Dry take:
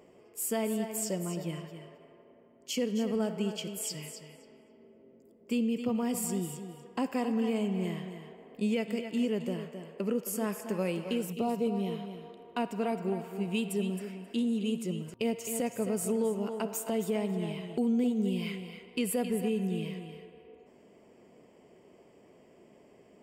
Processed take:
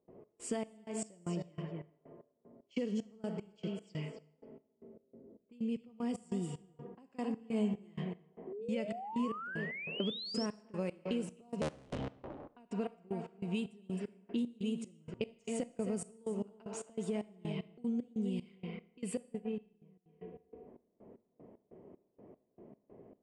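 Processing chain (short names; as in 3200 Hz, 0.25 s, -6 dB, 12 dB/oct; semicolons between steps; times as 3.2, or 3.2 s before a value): 11.61–12.49 cycle switcher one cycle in 3, inverted; 19.17–20.06 gate -27 dBFS, range -28 dB; low-pass opened by the level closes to 910 Hz, open at -27 dBFS; steep low-pass 10000 Hz 72 dB/oct; low shelf 440 Hz +4.5 dB; compressor 5:1, threshold -33 dBFS, peak gain reduction 10.5 dB; step gate ".xx..xxx...xx.." 190 bpm -24 dB; 7.38–8.04 doubler 14 ms -4 dB; 8.47–10.46 painted sound rise 360–5700 Hz -43 dBFS; Schroeder reverb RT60 0.6 s, combs from 26 ms, DRR 19 dB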